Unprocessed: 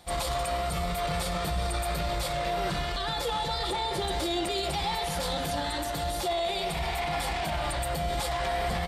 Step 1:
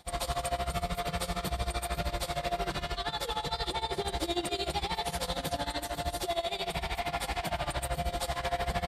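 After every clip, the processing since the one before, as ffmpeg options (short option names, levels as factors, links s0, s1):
-af "aecho=1:1:107|214|321|428|535|642|749:0.282|0.169|0.101|0.0609|0.0365|0.0219|0.0131,tremolo=f=13:d=0.87"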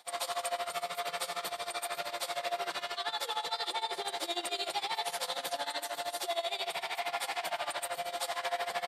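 -af "highpass=610"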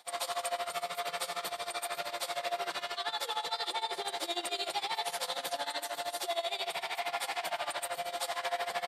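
-af anull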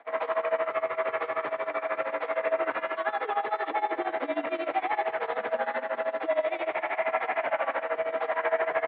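-af "highpass=f=240:t=q:w=0.5412,highpass=f=240:t=q:w=1.307,lowpass=f=2300:t=q:w=0.5176,lowpass=f=2300:t=q:w=0.7071,lowpass=f=2300:t=q:w=1.932,afreqshift=-51,volume=2.66"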